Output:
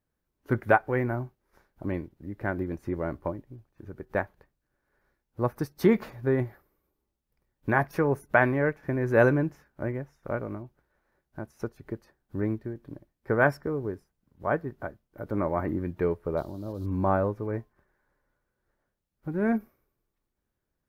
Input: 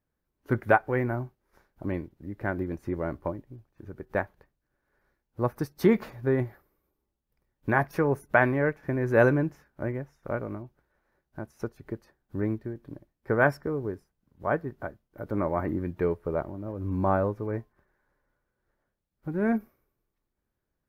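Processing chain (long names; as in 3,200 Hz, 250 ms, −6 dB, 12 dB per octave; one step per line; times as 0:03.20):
0:16.37–0:16.86: high shelf with overshoot 3,000 Hz +11.5 dB, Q 3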